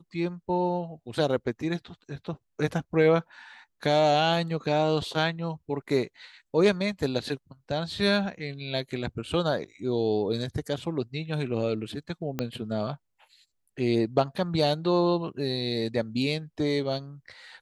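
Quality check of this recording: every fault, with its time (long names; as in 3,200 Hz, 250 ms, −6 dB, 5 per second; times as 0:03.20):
0:12.39: click −14 dBFS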